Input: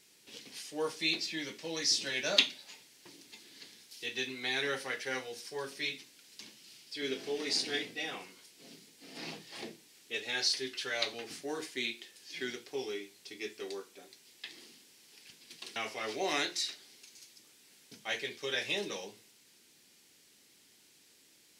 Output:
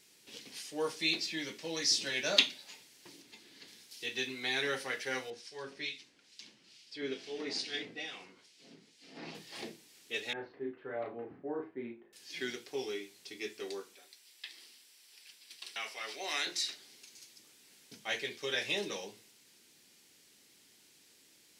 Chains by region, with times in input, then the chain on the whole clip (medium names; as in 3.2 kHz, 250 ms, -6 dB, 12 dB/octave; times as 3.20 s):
3.21–3.68 s: upward compressor, threshold -54 dBFS + treble shelf 4.5 kHz -7 dB
5.30–9.35 s: low-pass 6.4 kHz + harmonic tremolo 2.3 Hz, crossover 2 kHz
10.33–12.13 s: Bessel low-pass 920 Hz, order 4 + doubling 34 ms -4 dB + tape noise reduction on one side only decoder only
13.95–16.47 s: high-pass 1.4 kHz 6 dB/octave + band-stop 6.6 kHz, Q 11
whole clip: none